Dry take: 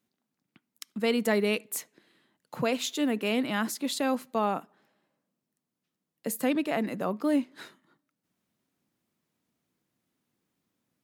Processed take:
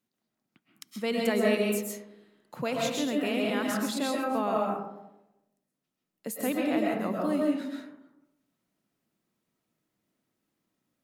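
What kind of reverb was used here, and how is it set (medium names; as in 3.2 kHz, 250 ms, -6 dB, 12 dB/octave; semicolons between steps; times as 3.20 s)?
algorithmic reverb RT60 0.92 s, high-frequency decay 0.35×, pre-delay 90 ms, DRR -2 dB; trim -4 dB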